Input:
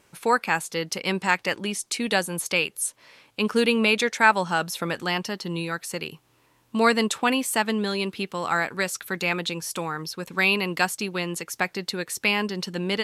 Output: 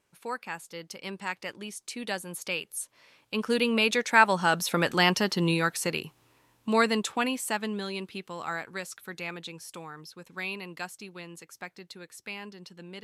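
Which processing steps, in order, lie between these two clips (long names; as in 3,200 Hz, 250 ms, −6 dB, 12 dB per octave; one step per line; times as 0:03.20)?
source passing by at 0:05.29, 6 m/s, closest 3.8 metres
level +4.5 dB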